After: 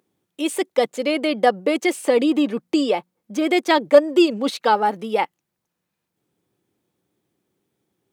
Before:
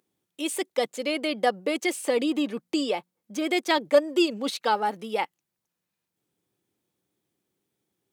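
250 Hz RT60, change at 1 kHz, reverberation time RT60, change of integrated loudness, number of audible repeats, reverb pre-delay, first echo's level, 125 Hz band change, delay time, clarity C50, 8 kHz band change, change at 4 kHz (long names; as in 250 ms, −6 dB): no reverb audible, +6.5 dB, no reverb audible, +6.5 dB, no echo audible, no reverb audible, no echo audible, can't be measured, no echo audible, no reverb audible, +1.5 dB, +3.0 dB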